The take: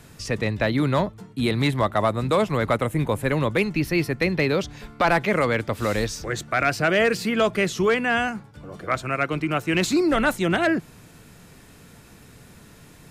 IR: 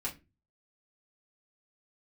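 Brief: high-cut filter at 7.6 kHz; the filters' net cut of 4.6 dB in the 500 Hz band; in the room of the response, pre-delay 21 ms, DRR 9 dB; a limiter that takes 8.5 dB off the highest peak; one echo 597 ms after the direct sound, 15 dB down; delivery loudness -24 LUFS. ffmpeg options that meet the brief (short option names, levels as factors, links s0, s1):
-filter_complex "[0:a]lowpass=7600,equalizer=f=500:t=o:g=-6,alimiter=limit=0.106:level=0:latency=1,aecho=1:1:597:0.178,asplit=2[s0][s1];[1:a]atrim=start_sample=2205,adelay=21[s2];[s1][s2]afir=irnorm=-1:irlink=0,volume=0.282[s3];[s0][s3]amix=inputs=2:normalize=0,volume=1.68"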